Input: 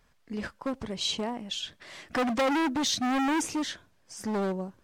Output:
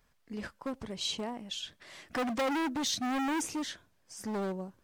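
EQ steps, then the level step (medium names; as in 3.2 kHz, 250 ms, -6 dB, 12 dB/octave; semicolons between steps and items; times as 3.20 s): treble shelf 11 kHz +7.5 dB; -5.0 dB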